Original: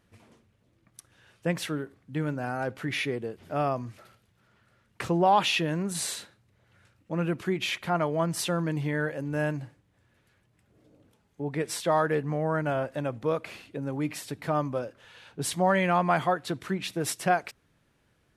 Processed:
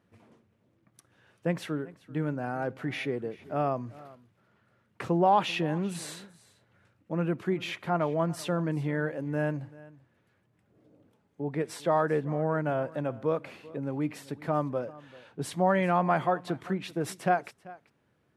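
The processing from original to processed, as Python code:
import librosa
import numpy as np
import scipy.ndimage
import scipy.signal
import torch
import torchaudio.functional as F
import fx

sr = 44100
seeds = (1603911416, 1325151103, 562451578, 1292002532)

p1 = scipy.signal.sosfilt(scipy.signal.butter(2, 110.0, 'highpass', fs=sr, output='sos'), x)
p2 = fx.high_shelf(p1, sr, hz=2300.0, db=-10.5)
y = p2 + fx.echo_single(p2, sr, ms=388, db=-20.5, dry=0)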